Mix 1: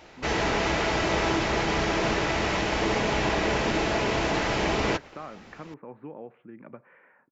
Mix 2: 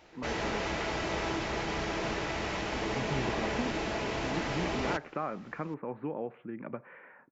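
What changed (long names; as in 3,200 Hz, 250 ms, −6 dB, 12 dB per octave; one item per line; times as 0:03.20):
speech +5.0 dB
background −8.0 dB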